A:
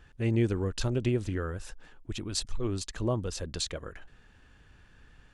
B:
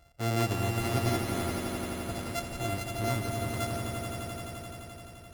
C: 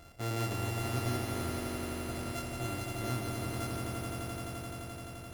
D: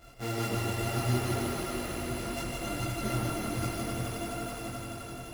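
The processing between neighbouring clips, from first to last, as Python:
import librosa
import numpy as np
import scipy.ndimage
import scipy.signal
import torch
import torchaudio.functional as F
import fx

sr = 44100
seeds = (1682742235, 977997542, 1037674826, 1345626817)

y1 = np.r_[np.sort(x[:len(x) // 64 * 64].reshape(-1, 64), axis=1).ravel(), x[len(x) // 64 * 64:]]
y1 = scipy.signal.sosfilt(scipy.signal.butter(2, 47.0, 'highpass', fs=sr, output='sos'), y1)
y1 = fx.echo_swell(y1, sr, ms=86, loudest=5, wet_db=-7.5)
y1 = y1 * librosa.db_to_amplitude(-2.5)
y2 = fx.bin_compress(y1, sr, power=0.6)
y2 = fx.doubler(y2, sr, ms=24.0, db=-5.5)
y2 = y2 * librosa.db_to_amplitude(-8.0)
y3 = fx.chorus_voices(y2, sr, voices=6, hz=0.64, base_ms=19, depth_ms=4.7, mix_pct=65)
y3 = y3 + 10.0 ** (-4.5 / 20.0) * np.pad(y3, (int(152 * sr / 1000.0), 0))[:len(y3)]
y3 = y3 * librosa.db_to_amplitude(5.0)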